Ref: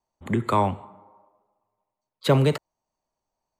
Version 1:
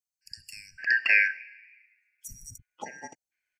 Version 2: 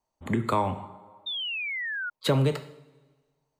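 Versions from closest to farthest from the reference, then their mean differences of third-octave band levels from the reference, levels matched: 2, 1; 3.0, 20.0 decibels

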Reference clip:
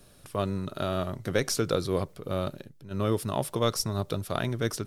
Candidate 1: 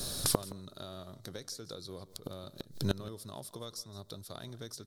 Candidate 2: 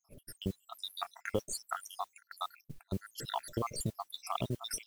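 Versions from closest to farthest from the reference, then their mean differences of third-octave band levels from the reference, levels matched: 1, 2; 8.0, 16.5 decibels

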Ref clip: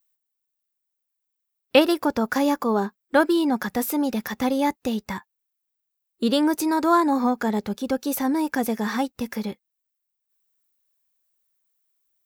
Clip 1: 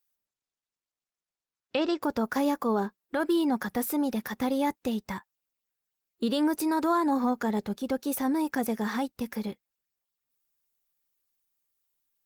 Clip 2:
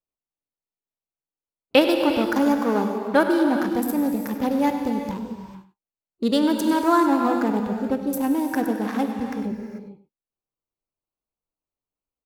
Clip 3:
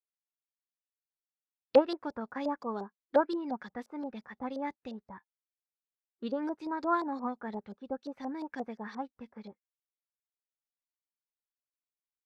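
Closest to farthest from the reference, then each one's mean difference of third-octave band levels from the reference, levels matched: 1, 2, 3; 1.5, 6.5, 8.5 decibels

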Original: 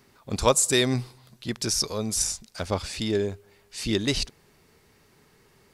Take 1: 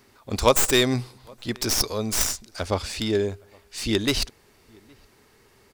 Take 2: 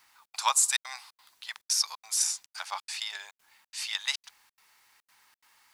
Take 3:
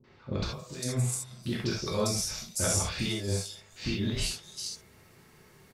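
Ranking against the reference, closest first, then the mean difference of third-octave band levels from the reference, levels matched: 1, 3, 2; 3.0, 10.0, 14.5 decibels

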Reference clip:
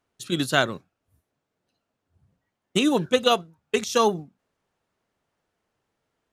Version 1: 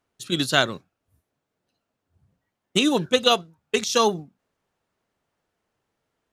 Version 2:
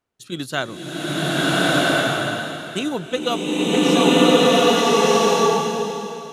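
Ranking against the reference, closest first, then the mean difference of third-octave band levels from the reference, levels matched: 1, 2; 1.0, 11.0 decibels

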